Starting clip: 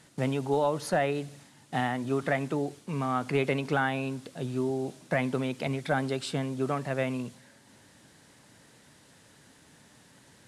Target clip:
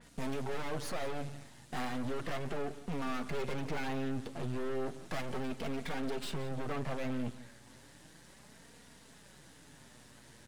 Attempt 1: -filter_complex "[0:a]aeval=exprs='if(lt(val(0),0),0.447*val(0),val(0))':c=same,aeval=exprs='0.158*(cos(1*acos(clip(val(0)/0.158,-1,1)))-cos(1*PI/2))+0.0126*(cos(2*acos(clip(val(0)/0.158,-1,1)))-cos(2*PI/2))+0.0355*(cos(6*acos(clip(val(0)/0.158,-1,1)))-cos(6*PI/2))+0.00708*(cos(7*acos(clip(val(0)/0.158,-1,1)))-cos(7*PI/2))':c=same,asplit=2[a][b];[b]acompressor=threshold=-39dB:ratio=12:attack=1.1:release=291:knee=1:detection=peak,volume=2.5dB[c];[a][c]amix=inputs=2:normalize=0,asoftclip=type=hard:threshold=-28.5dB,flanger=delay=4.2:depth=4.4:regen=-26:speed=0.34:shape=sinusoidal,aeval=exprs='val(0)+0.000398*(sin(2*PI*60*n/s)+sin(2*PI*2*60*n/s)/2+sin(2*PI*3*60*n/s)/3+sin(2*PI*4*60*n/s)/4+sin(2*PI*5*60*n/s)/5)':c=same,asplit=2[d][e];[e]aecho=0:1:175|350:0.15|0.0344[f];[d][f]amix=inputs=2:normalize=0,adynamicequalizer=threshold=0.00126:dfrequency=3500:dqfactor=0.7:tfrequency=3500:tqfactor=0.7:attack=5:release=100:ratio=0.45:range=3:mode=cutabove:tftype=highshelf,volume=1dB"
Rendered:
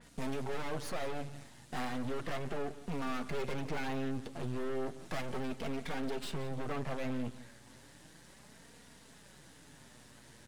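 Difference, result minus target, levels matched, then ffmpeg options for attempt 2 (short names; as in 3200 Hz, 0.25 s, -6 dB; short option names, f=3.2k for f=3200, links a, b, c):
compressor: peak gain reduction +7.5 dB
-filter_complex "[0:a]aeval=exprs='if(lt(val(0),0),0.447*val(0),val(0))':c=same,aeval=exprs='0.158*(cos(1*acos(clip(val(0)/0.158,-1,1)))-cos(1*PI/2))+0.0126*(cos(2*acos(clip(val(0)/0.158,-1,1)))-cos(2*PI/2))+0.0355*(cos(6*acos(clip(val(0)/0.158,-1,1)))-cos(6*PI/2))+0.00708*(cos(7*acos(clip(val(0)/0.158,-1,1)))-cos(7*PI/2))':c=same,asplit=2[a][b];[b]acompressor=threshold=-31dB:ratio=12:attack=1.1:release=291:knee=1:detection=peak,volume=2.5dB[c];[a][c]amix=inputs=2:normalize=0,asoftclip=type=hard:threshold=-28.5dB,flanger=delay=4.2:depth=4.4:regen=-26:speed=0.34:shape=sinusoidal,aeval=exprs='val(0)+0.000398*(sin(2*PI*60*n/s)+sin(2*PI*2*60*n/s)/2+sin(2*PI*3*60*n/s)/3+sin(2*PI*4*60*n/s)/4+sin(2*PI*5*60*n/s)/5)':c=same,asplit=2[d][e];[e]aecho=0:1:175|350:0.15|0.0344[f];[d][f]amix=inputs=2:normalize=0,adynamicequalizer=threshold=0.00126:dfrequency=3500:dqfactor=0.7:tfrequency=3500:tqfactor=0.7:attack=5:release=100:ratio=0.45:range=3:mode=cutabove:tftype=highshelf,volume=1dB"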